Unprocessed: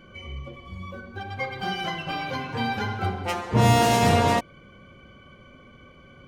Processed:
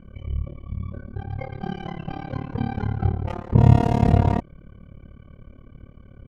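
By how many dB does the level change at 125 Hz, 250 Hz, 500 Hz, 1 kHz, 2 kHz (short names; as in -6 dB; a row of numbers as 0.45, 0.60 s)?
+6.5, +3.0, -3.0, -6.0, -11.5 dB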